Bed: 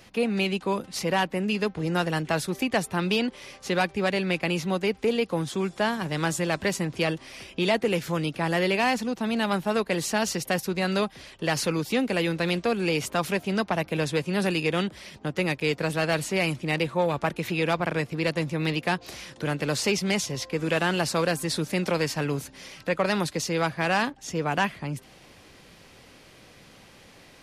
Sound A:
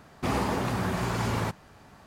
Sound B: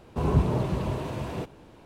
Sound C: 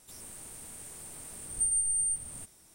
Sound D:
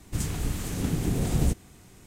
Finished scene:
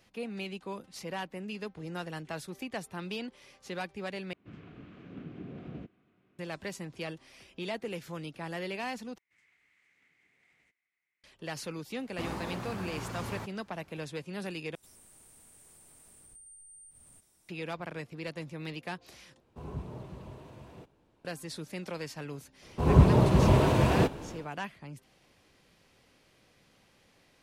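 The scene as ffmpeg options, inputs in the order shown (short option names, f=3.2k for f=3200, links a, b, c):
-filter_complex "[4:a]asplit=2[a][b];[2:a]asplit=2[c][d];[0:a]volume=-13dB[e];[a]highpass=190,equalizer=f=460:t=q:w=4:g=-3,equalizer=f=870:t=q:w=4:g=-10,equalizer=f=1.9k:t=q:w=4:g=-6,lowpass=f=2.6k:w=0.5412,lowpass=f=2.6k:w=1.3066[f];[b]bandpass=f=2.1k:t=q:w=8.9:csg=0[g];[3:a]acompressor=threshold=-44dB:ratio=6:attack=3.2:release=140:knee=1:detection=peak[h];[d]dynaudnorm=f=170:g=3:m=13dB[i];[e]asplit=5[j][k][l][m][n];[j]atrim=end=4.334[o];[f]atrim=end=2.06,asetpts=PTS-STARTPTS,volume=-12dB[p];[k]atrim=start=6.386:end=9.184[q];[g]atrim=end=2.06,asetpts=PTS-STARTPTS,volume=-15dB[r];[l]atrim=start=11.236:end=14.754[s];[h]atrim=end=2.74,asetpts=PTS-STARTPTS,volume=-9dB[t];[m]atrim=start=17.486:end=19.404[u];[c]atrim=end=1.85,asetpts=PTS-STARTPTS,volume=-17dB[v];[n]atrim=start=21.246[w];[1:a]atrim=end=2.06,asetpts=PTS-STARTPTS,volume=-10.5dB,afade=t=in:d=0.004:c=hsin,afade=t=out:st=2.056:d=0.004:c=hsin,adelay=11950[x];[i]atrim=end=1.85,asetpts=PTS-STARTPTS,volume=-4dB,afade=t=in:d=0.004:c=hsin,afade=t=out:st=1.846:d=0.004:c=hsin,adelay=22620[y];[o][p]acrossfade=d=0.004:c1=hsin:c2=hsin[z];[z][q]acrossfade=d=0.004:c1=hsin:c2=hsin[aa];[aa][r]acrossfade=d=0.004:c1=hsin:c2=hsin[ab];[ab][s]acrossfade=d=0.004:c1=hsin:c2=hsin[ac];[ac][t]acrossfade=d=0.004:c1=hsin:c2=hsin[ad];[ad][u]acrossfade=d=0.004:c1=hsin:c2=hsin[ae];[ae][v]acrossfade=d=0.004:c1=hsin:c2=hsin[af];[af][w]acrossfade=d=0.004:c1=hsin:c2=hsin[ag];[ag][x][y]amix=inputs=3:normalize=0"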